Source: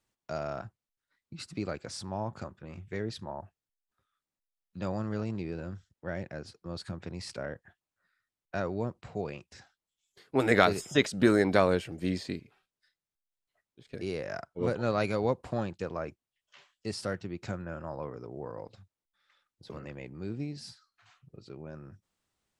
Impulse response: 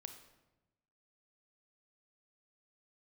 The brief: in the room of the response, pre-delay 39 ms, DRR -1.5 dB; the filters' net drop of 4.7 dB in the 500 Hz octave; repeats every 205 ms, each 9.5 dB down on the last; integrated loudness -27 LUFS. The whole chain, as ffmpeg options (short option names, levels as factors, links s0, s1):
-filter_complex "[0:a]equalizer=f=500:t=o:g=-6,aecho=1:1:205|410|615|820:0.335|0.111|0.0365|0.012,asplit=2[s0][s1];[1:a]atrim=start_sample=2205,adelay=39[s2];[s1][s2]afir=irnorm=-1:irlink=0,volume=2.11[s3];[s0][s3]amix=inputs=2:normalize=0,volume=1.5"